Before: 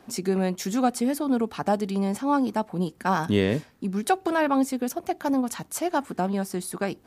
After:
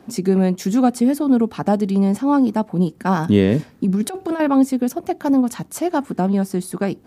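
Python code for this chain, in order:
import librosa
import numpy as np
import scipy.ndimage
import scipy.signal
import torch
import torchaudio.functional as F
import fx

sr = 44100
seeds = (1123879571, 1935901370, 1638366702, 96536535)

y = fx.over_compress(x, sr, threshold_db=-28.0, ratio=-1.0, at=(3.59, 4.4))
y = fx.peak_eq(y, sr, hz=190.0, db=8.5, octaves=2.8)
y = F.gain(torch.from_numpy(y), 1.0).numpy()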